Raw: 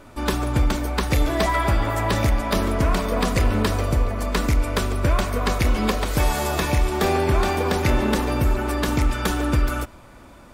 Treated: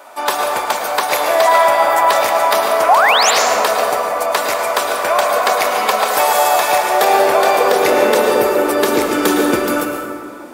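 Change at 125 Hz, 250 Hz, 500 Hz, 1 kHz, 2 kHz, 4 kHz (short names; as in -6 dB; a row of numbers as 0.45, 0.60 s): under -15 dB, +1.5 dB, +11.5 dB, +13.5 dB, +10.5 dB, +10.0 dB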